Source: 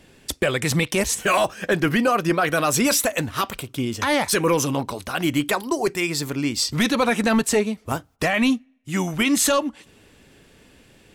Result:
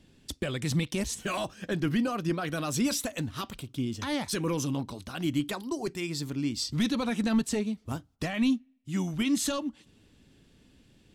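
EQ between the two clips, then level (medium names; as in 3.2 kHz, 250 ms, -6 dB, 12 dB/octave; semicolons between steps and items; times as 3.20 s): low-pass 3.7 kHz 6 dB/octave; high-order bell 1 kHz -8.5 dB 3 oct; -5.0 dB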